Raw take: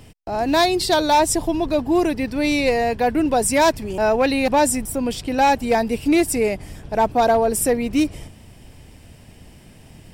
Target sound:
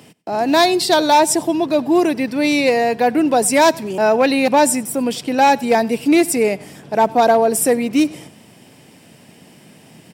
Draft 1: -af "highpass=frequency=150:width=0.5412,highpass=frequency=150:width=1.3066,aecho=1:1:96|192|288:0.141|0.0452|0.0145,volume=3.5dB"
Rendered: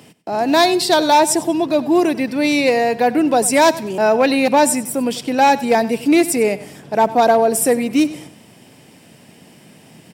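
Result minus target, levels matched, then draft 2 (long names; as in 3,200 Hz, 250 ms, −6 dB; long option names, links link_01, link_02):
echo-to-direct +6 dB
-af "highpass=frequency=150:width=0.5412,highpass=frequency=150:width=1.3066,aecho=1:1:96|192:0.0708|0.0227,volume=3.5dB"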